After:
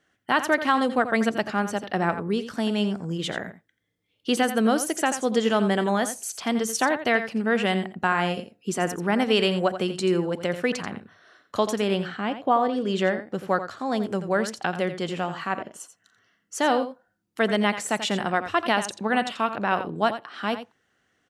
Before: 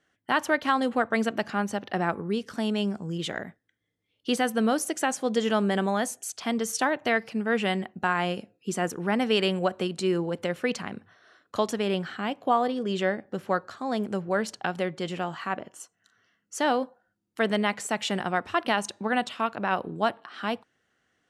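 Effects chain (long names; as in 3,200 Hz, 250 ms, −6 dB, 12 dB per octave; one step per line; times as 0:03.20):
0:12.06–0:12.72: high-shelf EQ 6,900 Hz → 3,900 Hz −11 dB
single-tap delay 86 ms −11 dB
level +2.5 dB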